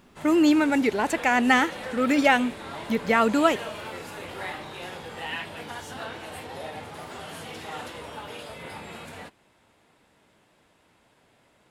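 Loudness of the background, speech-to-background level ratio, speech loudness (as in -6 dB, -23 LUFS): -37.5 LUFS, 15.0 dB, -22.5 LUFS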